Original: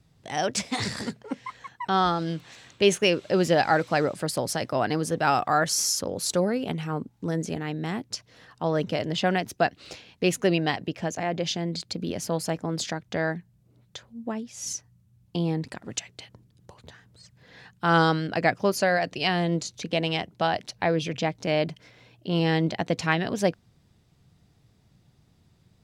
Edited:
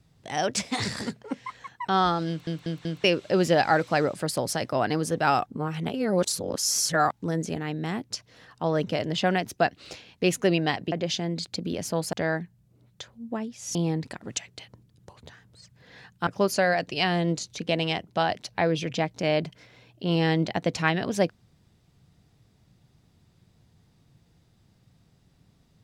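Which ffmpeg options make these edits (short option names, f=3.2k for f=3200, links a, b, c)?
-filter_complex "[0:a]asplit=11[a][b][c][d][e][f][g][h][i][j][k];[a]atrim=end=2.472[l];[b]atrim=start=2.278:end=2.472[m];[c]atrim=start=2.278:end=2.472[n];[d]atrim=start=2.278:end=2.472[o];[e]atrim=start=3.038:end=5.462[p];[f]atrim=start=5.458:end=7.122,asetpts=PTS-STARTPTS,areverse[q];[g]atrim=start=7.118:end=10.922[r];[h]atrim=start=11.288:end=12.502[s];[i]atrim=start=13.078:end=14.702[t];[j]atrim=start=15.358:end=17.882[u];[k]atrim=start=18.508[v];[l][m]acrossfade=d=0.004:c1=hsin:c2=hsin[w];[w][n]acrossfade=d=0.004:c1=hsin:c2=hsin[x];[x][o]acrossfade=d=0.004:c1=hsin:c2=hsin[y];[y][p]acrossfade=d=0.004:c1=hsin:c2=hsin[z];[z][q]acrossfade=d=0.004:c1=hsin:c2=hsin[aa];[aa][r]acrossfade=d=0.004:c1=hsin:c2=hsin[ab];[ab][s]acrossfade=d=0.004:c1=hsin:c2=hsin[ac];[ac][t]acrossfade=d=0.004:c1=hsin:c2=hsin[ad];[ad][u]acrossfade=d=0.004:c1=hsin:c2=hsin[ae];[ae][v]acrossfade=d=0.004:c1=hsin:c2=hsin"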